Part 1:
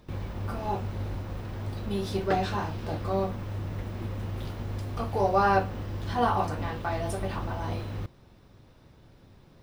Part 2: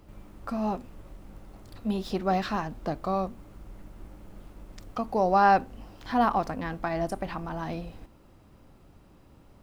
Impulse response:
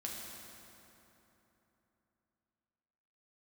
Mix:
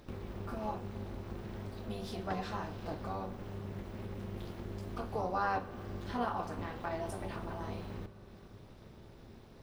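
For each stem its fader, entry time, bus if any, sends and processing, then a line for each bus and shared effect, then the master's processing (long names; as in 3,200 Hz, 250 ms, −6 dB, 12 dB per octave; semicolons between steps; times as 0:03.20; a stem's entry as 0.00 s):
+2.0 dB, 0.00 s, send −8 dB, downward compressor 2 to 1, threshold −46 dBFS, peak gain reduction 15 dB; amplitude modulation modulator 300 Hz, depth 80%
−13.5 dB, 0.00 s, no send, no processing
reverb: on, RT60 3.3 s, pre-delay 5 ms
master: no processing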